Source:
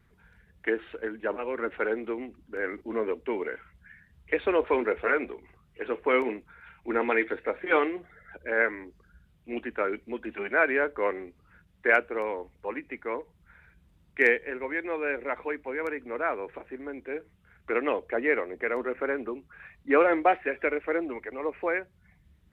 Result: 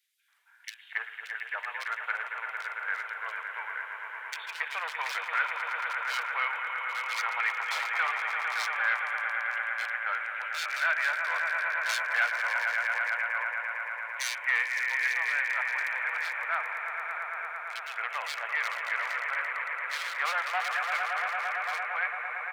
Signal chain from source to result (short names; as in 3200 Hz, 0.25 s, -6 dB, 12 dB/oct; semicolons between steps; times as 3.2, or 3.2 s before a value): on a send: swelling echo 0.113 s, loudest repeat 5, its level -9 dB; on the sum: hard clip -20 dBFS, distortion -13 dB; Bessel high-pass 1400 Hz, order 8; bands offset in time highs, lows 0.28 s, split 2700 Hz; gain +4.5 dB